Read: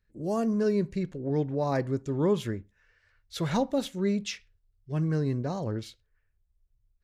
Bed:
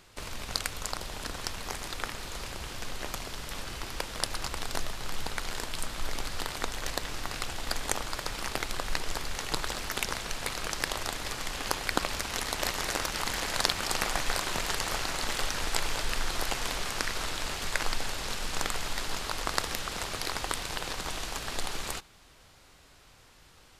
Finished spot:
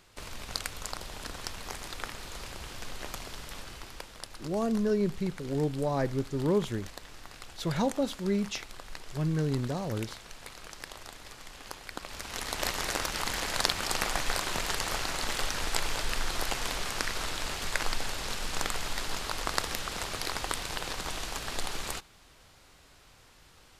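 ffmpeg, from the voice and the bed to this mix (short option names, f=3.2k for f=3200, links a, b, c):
-filter_complex "[0:a]adelay=4250,volume=-1.5dB[a];[1:a]volume=8.5dB,afade=t=out:st=3.35:d=0.88:silence=0.354813,afade=t=in:st=12.02:d=0.64:silence=0.266073[b];[a][b]amix=inputs=2:normalize=0"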